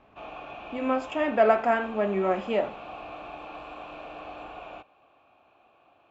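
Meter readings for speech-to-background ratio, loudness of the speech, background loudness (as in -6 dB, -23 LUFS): 15.5 dB, -26.0 LUFS, -41.5 LUFS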